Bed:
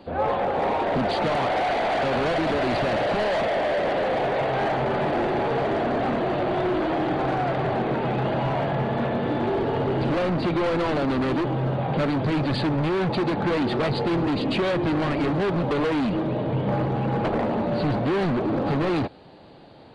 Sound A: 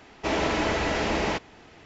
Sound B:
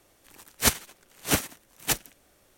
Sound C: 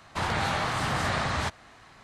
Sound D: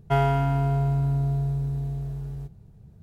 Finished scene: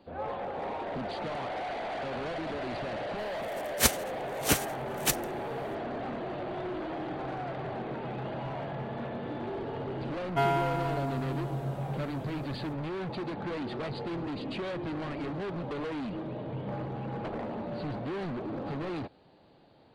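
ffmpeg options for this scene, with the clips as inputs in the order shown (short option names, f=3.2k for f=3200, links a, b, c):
-filter_complex "[0:a]volume=-12dB[a];[4:a]highpass=f=490:p=1[b];[2:a]atrim=end=2.57,asetpts=PTS-STARTPTS,volume=-2dB,afade=t=in:d=0.004:c=hsin,afade=t=out:st=2.566:d=0.004:c=hsin,adelay=3180[c];[b]atrim=end=3.02,asetpts=PTS-STARTPTS,volume=-1dB,afade=t=in:d=0.004:c=hsin,afade=t=out:st=3.016:d=0.004:c=hsin,adelay=452466S[d];[a][c][d]amix=inputs=3:normalize=0"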